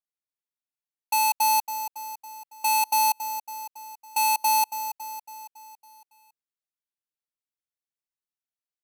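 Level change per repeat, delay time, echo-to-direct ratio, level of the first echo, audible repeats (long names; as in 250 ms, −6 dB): −5.0 dB, 278 ms, −10.0 dB, −11.5 dB, 5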